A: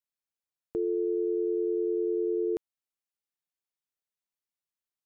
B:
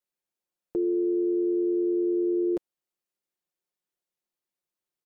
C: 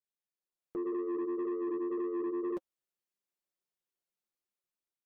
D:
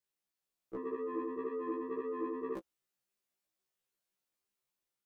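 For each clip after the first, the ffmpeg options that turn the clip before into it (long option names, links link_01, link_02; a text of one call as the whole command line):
ffmpeg -i in.wav -af "equalizer=frequency=380:width_type=o:width=1.8:gain=8,aecho=1:1:5.6:0.49,alimiter=limit=-20.5dB:level=0:latency=1:release=15" out.wav
ffmpeg -i in.wav -af "dynaudnorm=framelen=390:gausssize=3:maxgain=6.5dB,flanger=delay=4.4:depth=6.3:regen=-34:speed=1.9:shape=sinusoidal,asoftclip=type=tanh:threshold=-23.5dB,volume=-7.5dB" out.wav
ffmpeg -i in.wav -af "afftfilt=real='re*1.73*eq(mod(b,3),0)':imag='im*1.73*eq(mod(b,3),0)':win_size=2048:overlap=0.75,volume=6dB" out.wav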